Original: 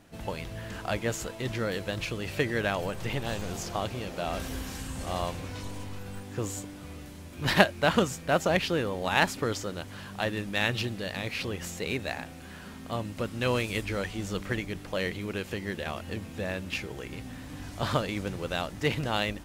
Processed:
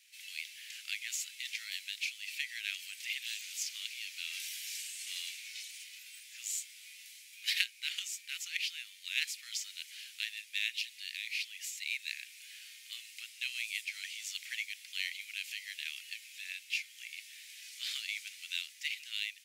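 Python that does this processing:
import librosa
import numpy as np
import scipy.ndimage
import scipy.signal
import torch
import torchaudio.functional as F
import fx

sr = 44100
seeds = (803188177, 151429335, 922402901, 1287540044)

y = fx.highpass(x, sr, hz=420.0, slope=12, at=(7.44, 9.93))
y = scipy.signal.sosfilt(scipy.signal.ellip(4, 1.0, 60, 2200.0, 'highpass', fs=sr, output='sos'), y)
y = fx.rider(y, sr, range_db=3, speed_s=0.5)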